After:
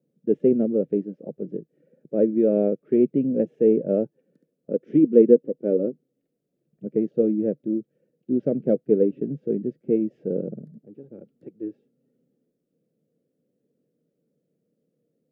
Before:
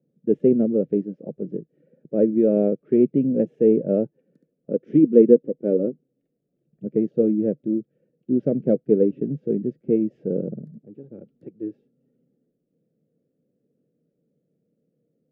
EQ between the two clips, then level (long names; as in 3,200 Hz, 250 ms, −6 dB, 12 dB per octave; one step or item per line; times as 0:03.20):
low-shelf EQ 170 Hz −7 dB
0.0 dB